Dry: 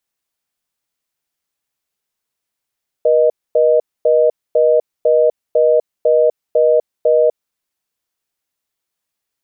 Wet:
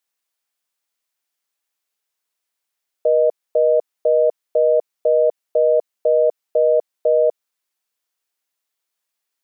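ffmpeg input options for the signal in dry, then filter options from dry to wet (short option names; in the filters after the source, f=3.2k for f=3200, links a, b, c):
-f lavfi -i "aevalsrc='0.266*(sin(2*PI*480*t)+sin(2*PI*620*t))*clip(min(mod(t,0.5),0.25-mod(t,0.5))/0.005,0,1)':d=4.37:s=44100"
-af "highpass=f=550:p=1"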